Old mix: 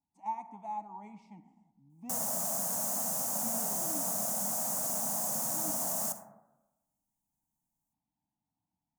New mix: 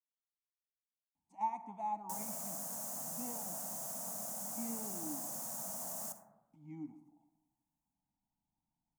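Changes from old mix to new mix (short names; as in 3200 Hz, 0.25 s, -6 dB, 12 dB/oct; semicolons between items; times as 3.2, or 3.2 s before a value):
speech: entry +1.15 s; background -9.5 dB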